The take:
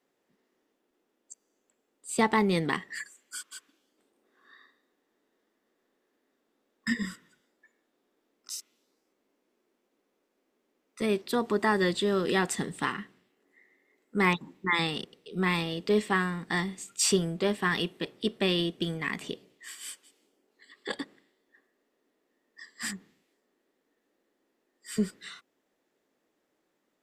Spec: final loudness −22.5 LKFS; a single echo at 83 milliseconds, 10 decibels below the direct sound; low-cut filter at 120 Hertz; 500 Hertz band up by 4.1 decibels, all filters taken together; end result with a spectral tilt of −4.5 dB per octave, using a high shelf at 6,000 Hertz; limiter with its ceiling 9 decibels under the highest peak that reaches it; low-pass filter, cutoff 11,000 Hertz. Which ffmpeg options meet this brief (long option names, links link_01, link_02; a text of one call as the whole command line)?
ffmpeg -i in.wav -af "highpass=120,lowpass=11000,equalizer=frequency=500:width_type=o:gain=5.5,highshelf=frequency=6000:gain=-6,alimiter=limit=-17.5dB:level=0:latency=1,aecho=1:1:83:0.316,volume=8.5dB" out.wav